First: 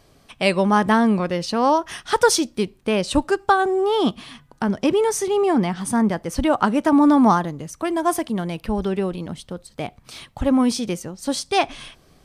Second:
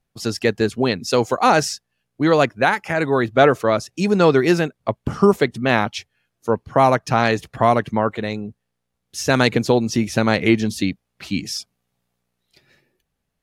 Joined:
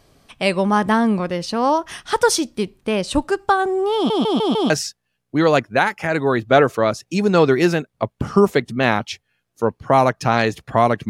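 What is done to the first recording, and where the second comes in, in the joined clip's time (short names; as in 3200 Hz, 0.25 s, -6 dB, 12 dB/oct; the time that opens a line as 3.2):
first
3.95 stutter in place 0.15 s, 5 plays
4.7 switch to second from 1.56 s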